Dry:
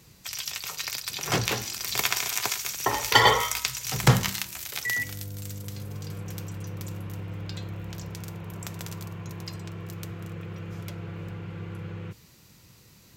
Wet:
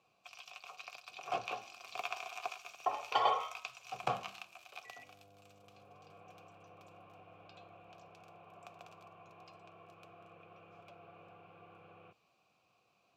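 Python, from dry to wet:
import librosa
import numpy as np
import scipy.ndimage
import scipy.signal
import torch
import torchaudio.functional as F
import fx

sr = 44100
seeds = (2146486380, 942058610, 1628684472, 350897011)

y = fx.vowel_filter(x, sr, vowel='a')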